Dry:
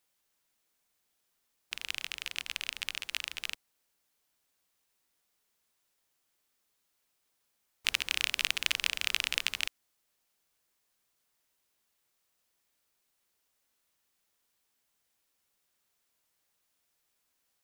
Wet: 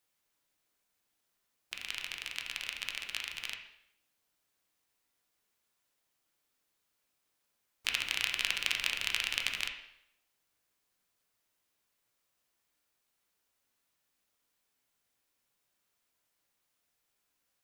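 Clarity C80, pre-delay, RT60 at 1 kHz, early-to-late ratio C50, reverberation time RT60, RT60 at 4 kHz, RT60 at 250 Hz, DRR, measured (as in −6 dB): 9.5 dB, 4 ms, 0.70 s, 7.0 dB, 0.70 s, 0.70 s, 0.75 s, 2.0 dB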